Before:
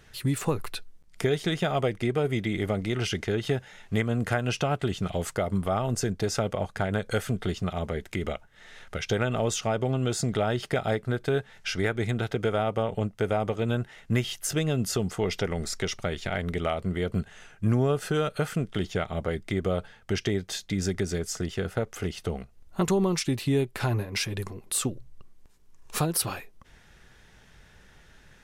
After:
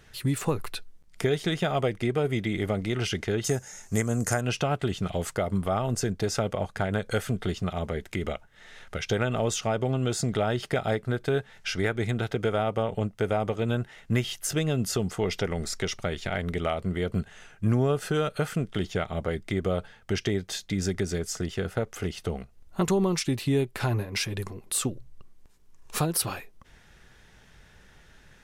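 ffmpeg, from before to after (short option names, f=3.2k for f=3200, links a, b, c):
-filter_complex "[0:a]asettb=1/sr,asplit=3[a][b][c];[a]atrim=end=3.444[d];[b]atrim=start=3.44:end=4.41,asetpts=PTS-STARTPTS,afade=t=in:d=0.004:c=qsin,afade=t=out:st=0.966:d=0.004:c=qsin,highshelf=f=4.7k:t=q:w=3:g=11.5[e];[c]atrim=start=4.406[f];[d][e]acrossfade=d=0.004:c1=hsin:c2=qsin[g];[g][f]acrossfade=d=0.004:c1=qsin:c2=hsin"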